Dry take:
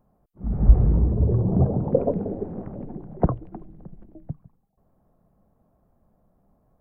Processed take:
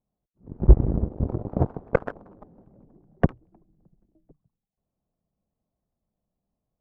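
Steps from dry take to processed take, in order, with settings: tilt shelf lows +3.5 dB, about 1100 Hz; added harmonics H 5 -21 dB, 6 -26 dB, 7 -13 dB, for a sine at 1.5 dBFS; running maximum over 3 samples; gain -3 dB

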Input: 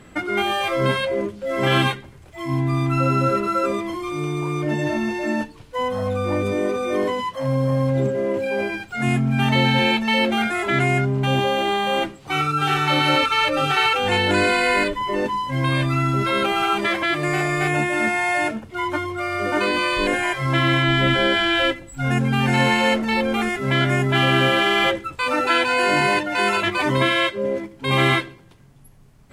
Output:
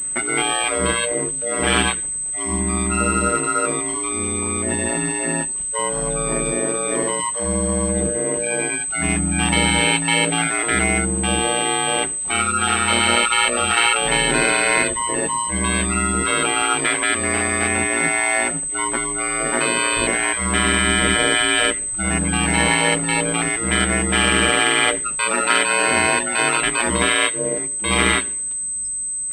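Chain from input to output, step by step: high shelf 2500 Hz +11.5 dB; ring modulator 58 Hz; pulse-width modulation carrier 8200 Hz; gain +1 dB

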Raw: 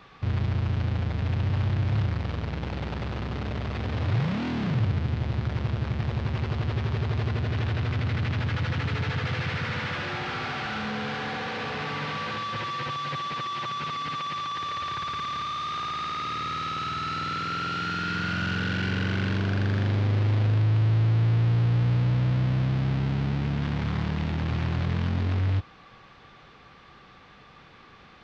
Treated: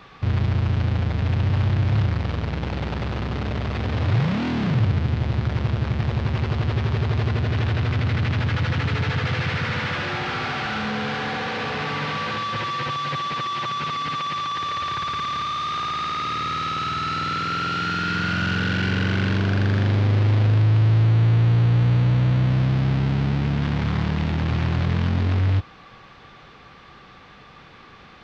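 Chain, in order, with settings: 21.04–22.5 notch 5100 Hz, Q 11; gain +5 dB

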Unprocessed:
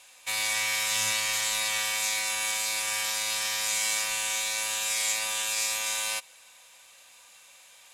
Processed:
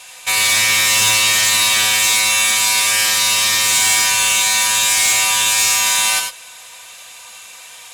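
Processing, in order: notch comb 280 Hz; non-linear reverb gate 0.12 s rising, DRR 5 dB; added harmonics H 5 -12 dB, 6 -18 dB, 8 -19 dB, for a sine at -14.5 dBFS; gain +9 dB

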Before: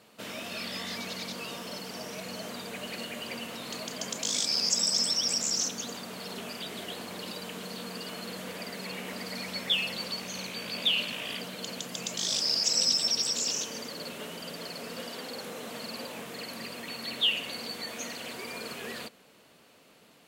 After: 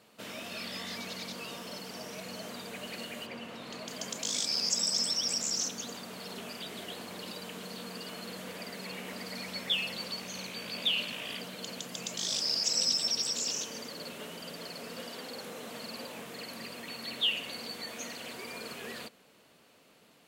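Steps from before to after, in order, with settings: 3.25–3.87 LPF 2100 Hz -> 3900 Hz 6 dB/oct; gain -3 dB

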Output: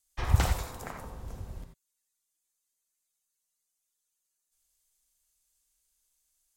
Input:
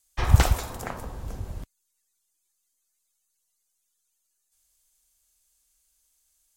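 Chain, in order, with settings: non-linear reverb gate 0.11 s rising, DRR 5 dB; gain -7 dB

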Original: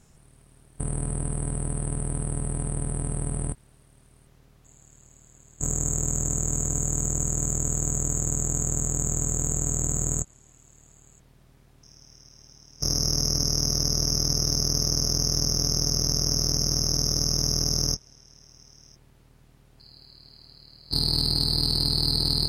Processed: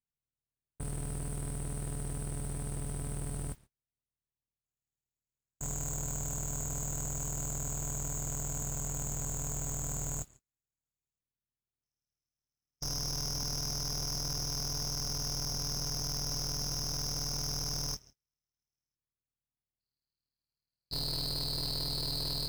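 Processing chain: gate -43 dBFS, range -38 dB; overloaded stage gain 25.5 dB; modulation noise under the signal 19 dB; gain -6.5 dB

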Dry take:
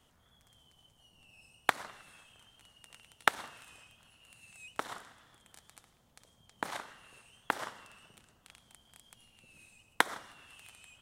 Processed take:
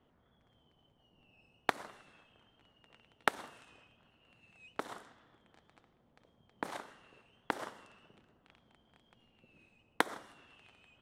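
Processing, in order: bell 340 Hz +9 dB 2.3 oct; low-pass opened by the level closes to 2400 Hz, open at -36.5 dBFS; gain -6 dB

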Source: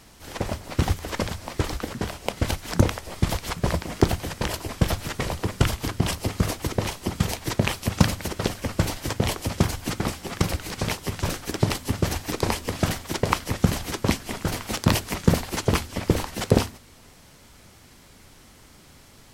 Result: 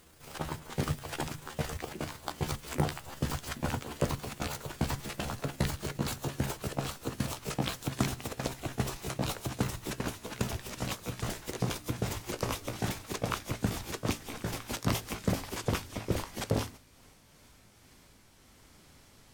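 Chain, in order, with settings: gliding pitch shift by +8 st ending unshifted; soft clip -11 dBFS, distortion -15 dB; gain -7 dB

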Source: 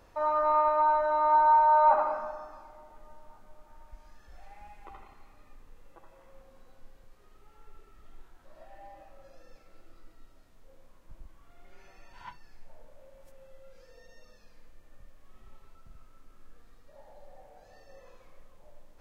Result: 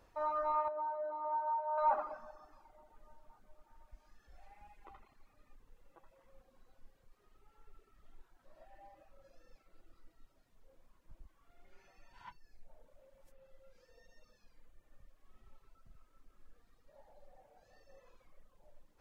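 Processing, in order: reverb removal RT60 0.89 s; 0.68–1.78 band-pass 480 Hz, Q 1.2; gain -7 dB

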